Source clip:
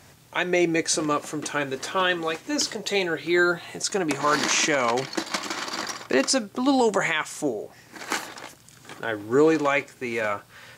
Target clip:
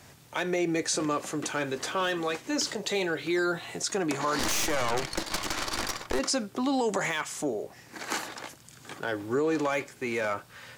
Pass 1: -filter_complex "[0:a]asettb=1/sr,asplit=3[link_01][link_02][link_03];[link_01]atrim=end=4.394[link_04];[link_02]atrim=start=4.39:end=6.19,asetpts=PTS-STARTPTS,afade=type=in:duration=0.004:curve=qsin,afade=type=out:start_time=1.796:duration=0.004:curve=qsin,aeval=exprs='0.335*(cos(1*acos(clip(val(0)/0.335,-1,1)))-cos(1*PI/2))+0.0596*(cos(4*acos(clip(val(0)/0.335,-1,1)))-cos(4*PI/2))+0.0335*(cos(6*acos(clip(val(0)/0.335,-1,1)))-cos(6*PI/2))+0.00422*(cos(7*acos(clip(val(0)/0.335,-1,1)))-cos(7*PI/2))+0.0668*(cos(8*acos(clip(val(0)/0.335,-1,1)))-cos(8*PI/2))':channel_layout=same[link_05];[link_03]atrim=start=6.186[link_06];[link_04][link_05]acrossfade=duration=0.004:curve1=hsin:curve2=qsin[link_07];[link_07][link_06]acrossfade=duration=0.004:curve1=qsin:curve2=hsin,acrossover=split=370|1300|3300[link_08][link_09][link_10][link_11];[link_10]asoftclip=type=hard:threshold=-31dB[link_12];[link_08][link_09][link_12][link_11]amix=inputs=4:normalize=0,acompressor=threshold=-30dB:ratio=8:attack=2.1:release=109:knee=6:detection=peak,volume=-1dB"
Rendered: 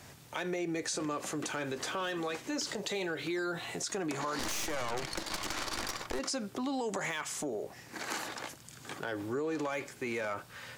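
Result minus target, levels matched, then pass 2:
downward compressor: peak gain reduction +8 dB
-filter_complex "[0:a]asettb=1/sr,asplit=3[link_01][link_02][link_03];[link_01]atrim=end=4.394[link_04];[link_02]atrim=start=4.39:end=6.19,asetpts=PTS-STARTPTS,afade=type=in:duration=0.004:curve=qsin,afade=type=out:start_time=1.796:duration=0.004:curve=qsin,aeval=exprs='0.335*(cos(1*acos(clip(val(0)/0.335,-1,1)))-cos(1*PI/2))+0.0596*(cos(4*acos(clip(val(0)/0.335,-1,1)))-cos(4*PI/2))+0.0335*(cos(6*acos(clip(val(0)/0.335,-1,1)))-cos(6*PI/2))+0.00422*(cos(7*acos(clip(val(0)/0.335,-1,1)))-cos(7*PI/2))+0.0668*(cos(8*acos(clip(val(0)/0.335,-1,1)))-cos(8*PI/2))':channel_layout=same[link_05];[link_03]atrim=start=6.186[link_06];[link_04][link_05]acrossfade=duration=0.004:curve1=hsin:curve2=qsin[link_07];[link_07][link_06]acrossfade=duration=0.004:curve1=qsin:curve2=hsin,acrossover=split=370|1300|3300[link_08][link_09][link_10][link_11];[link_10]asoftclip=type=hard:threshold=-31dB[link_12];[link_08][link_09][link_12][link_11]amix=inputs=4:normalize=0,acompressor=threshold=-21dB:ratio=8:attack=2.1:release=109:knee=6:detection=peak,volume=-1dB"

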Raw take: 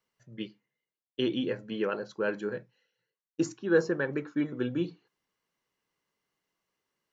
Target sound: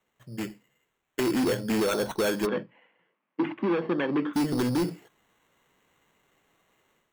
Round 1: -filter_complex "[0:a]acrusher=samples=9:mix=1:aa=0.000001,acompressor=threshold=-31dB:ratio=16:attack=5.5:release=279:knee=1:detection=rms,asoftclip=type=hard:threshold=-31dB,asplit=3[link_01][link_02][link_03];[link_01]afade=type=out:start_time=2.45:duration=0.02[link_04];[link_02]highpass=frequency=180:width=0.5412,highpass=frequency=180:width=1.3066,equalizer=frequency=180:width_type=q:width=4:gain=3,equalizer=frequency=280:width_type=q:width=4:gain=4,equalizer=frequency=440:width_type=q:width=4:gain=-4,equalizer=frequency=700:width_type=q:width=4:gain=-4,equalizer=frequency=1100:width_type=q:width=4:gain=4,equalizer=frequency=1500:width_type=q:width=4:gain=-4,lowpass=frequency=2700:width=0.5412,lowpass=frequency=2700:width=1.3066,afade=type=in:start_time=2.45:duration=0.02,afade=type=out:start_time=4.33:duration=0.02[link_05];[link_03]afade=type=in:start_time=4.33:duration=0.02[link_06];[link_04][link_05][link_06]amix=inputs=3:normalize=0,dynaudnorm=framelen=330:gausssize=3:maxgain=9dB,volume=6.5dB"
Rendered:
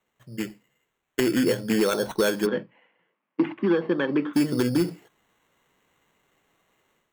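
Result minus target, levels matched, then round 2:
hard clipping: distortion −10 dB
-filter_complex "[0:a]acrusher=samples=9:mix=1:aa=0.000001,acompressor=threshold=-31dB:ratio=16:attack=5.5:release=279:knee=1:detection=rms,asoftclip=type=hard:threshold=-37.5dB,asplit=3[link_01][link_02][link_03];[link_01]afade=type=out:start_time=2.45:duration=0.02[link_04];[link_02]highpass=frequency=180:width=0.5412,highpass=frequency=180:width=1.3066,equalizer=frequency=180:width_type=q:width=4:gain=3,equalizer=frequency=280:width_type=q:width=4:gain=4,equalizer=frequency=440:width_type=q:width=4:gain=-4,equalizer=frequency=700:width_type=q:width=4:gain=-4,equalizer=frequency=1100:width_type=q:width=4:gain=4,equalizer=frequency=1500:width_type=q:width=4:gain=-4,lowpass=frequency=2700:width=0.5412,lowpass=frequency=2700:width=1.3066,afade=type=in:start_time=2.45:duration=0.02,afade=type=out:start_time=4.33:duration=0.02[link_05];[link_03]afade=type=in:start_time=4.33:duration=0.02[link_06];[link_04][link_05][link_06]amix=inputs=3:normalize=0,dynaudnorm=framelen=330:gausssize=3:maxgain=9dB,volume=6.5dB"

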